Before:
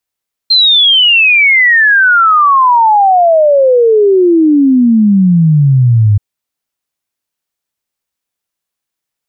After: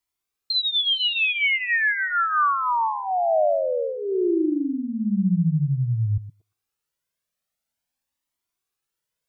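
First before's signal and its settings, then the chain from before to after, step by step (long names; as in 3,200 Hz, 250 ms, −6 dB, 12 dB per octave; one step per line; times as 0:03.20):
exponential sine sweep 4,200 Hz → 100 Hz 5.68 s −4 dBFS
brickwall limiter −15.5 dBFS
on a send: echo through a band-pass that steps 116 ms, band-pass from 210 Hz, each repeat 1.4 octaves, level −1 dB
on the sum: flanger whose copies keep moving one way rising 0.48 Hz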